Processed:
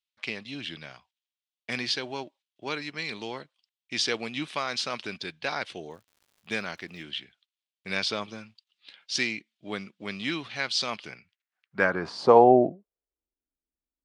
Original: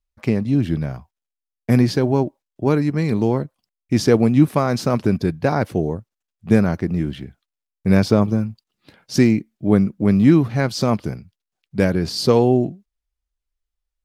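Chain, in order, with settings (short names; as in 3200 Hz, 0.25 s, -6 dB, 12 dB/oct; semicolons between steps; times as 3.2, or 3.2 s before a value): band-pass sweep 3300 Hz -> 270 Hz, 10.9–13.48; downsampling 22050 Hz; 5.9–7.01 crackle 160/s -58 dBFS; gain +8 dB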